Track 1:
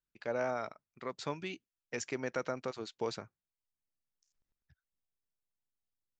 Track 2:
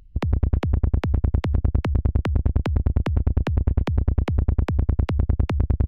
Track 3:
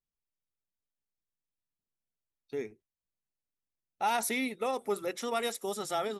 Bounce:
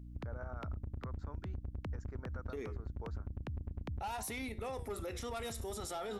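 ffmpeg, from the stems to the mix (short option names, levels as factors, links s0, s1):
-filter_complex "[0:a]highshelf=f=1900:t=q:w=3:g=-10.5,volume=0.316[s0];[1:a]volume=0.178[s1];[2:a]aeval=exprs='0.119*sin(PI/2*1.58*val(0)/0.119)':c=same,flanger=delay=9.1:depth=8.8:regen=82:speed=0.44:shape=sinusoidal,volume=1.33[s2];[s0][s1][s2]amix=inputs=3:normalize=0,aeval=exprs='val(0)+0.00398*(sin(2*PI*60*n/s)+sin(2*PI*2*60*n/s)/2+sin(2*PI*3*60*n/s)/3+sin(2*PI*4*60*n/s)/4+sin(2*PI*5*60*n/s)/5)':c=same,alimiter=level_in=3.16:limit=0.0631:level=0:latency=1:release=110,volume=0.316"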